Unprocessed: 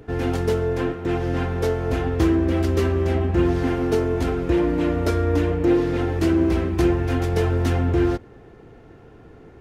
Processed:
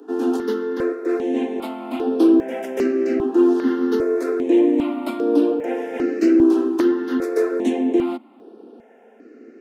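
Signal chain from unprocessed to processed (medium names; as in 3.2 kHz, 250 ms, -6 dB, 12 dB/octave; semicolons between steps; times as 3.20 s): steep high-pass 220 Hz 96 dB/octave; bass shelf 430 Hz +10.5 dB; stepped phaser 2.5 Hz 580–6900 Hz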